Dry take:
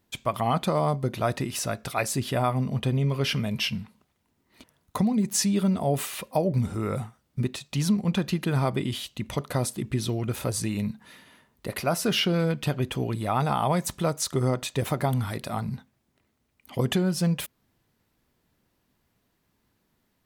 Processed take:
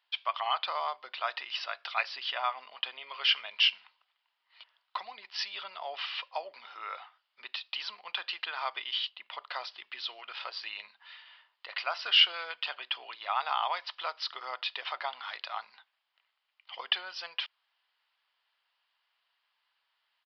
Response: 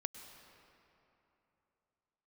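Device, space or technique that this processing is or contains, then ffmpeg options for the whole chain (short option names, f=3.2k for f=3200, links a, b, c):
musical greeting card: -filter_complex "[0:a]aresample=11025,aresample=44100,highpass=f=890:w=0.5412,highpass=f=890:w=1.3066,equalizer=f=3k:t=o:w=0.33:g=8,asettb=1/sr,asplit=3[a][b][c];[a]atrim=end=9.094[d];[b]atrim=start=9.09:end=9.5,asetpts=PTS-STARTPTS,afade=t=in:d=0.004:c=qsin,afade=t=out:st=0.406:d=0.004:c=qsin,highshelf=f=2.3k:g=-9[e];[c]atrim=start=9.496[f];[d][e]acrossfade=d=0.004:c1=hsin:c2=qsin[g];[g][f]acrossfade=d=0.004:c1=qsin:c2=hsin,volume=-1dB"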